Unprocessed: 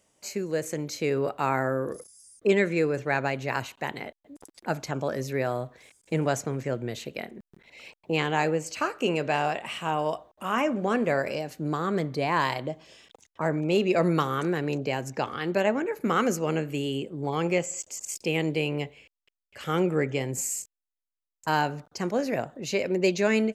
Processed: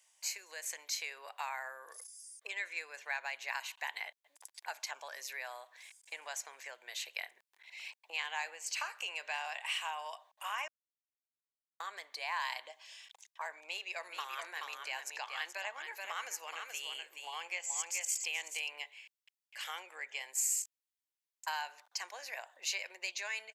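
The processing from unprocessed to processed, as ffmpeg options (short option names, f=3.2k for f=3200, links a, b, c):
-filter_complex "[0:a]asplit=3[a][b][c];[a]afade=t=out:st=14.03:d=0.02[d];[b]aecho=1:1:428:0.447,afade=t=in:st=14.03:d=0.02,afade=t=out:st=18.68:d=0.02[e];[c]afade=t=in:st=18.68:d=0.02[f];[d][e][f]amix=inputs=3:normalize=0,asplit=3[g][h][i];[g]atrim=end=10.68,asetpts=PTS-STARTPTS,afade=t=out:st=10.676:d=0.004:c=hsin[j];[h]atrim=start=10.68:end=11.8,asetpts=PTS-STARTPTS,volume=0[k];[i]atrim=start=11.8,asetpts=PTS-STARTPTS,afade=t=in:d=0.004:c=hsin[l];[j][k][l]concat=n=3:v=0:a=1,acompressor=threshold=-30dB:ratio=3,highpass=f=980:w=0.5412,highpass=f=980:w=1.3066,equalizer=f=1.3k:w=5:g=-13,volume=1dB"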